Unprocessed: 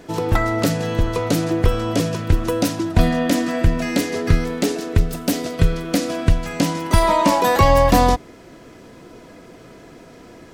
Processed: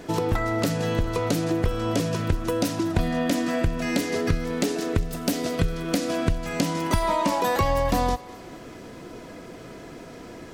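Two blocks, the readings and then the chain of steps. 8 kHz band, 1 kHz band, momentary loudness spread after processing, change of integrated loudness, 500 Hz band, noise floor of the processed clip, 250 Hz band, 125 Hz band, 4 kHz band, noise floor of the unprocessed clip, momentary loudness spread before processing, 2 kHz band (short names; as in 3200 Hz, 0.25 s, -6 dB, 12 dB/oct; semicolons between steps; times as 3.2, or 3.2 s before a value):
-5.0 dB, -7.0 dB, 18 LU, -6.0 dB, -5.5 dB, -42 dBFS, -5.0 dB, -7.0 dB, -5.0 dB, -44 dBFS, 7 LU, -5.0 dB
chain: compressor 3:1, threshold -24 dBFS, peak gain reduction 12 dB; on a send: thinning echo 0.203 s, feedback 53%, level -18.5 dB; on the sum: gain +1.5 dB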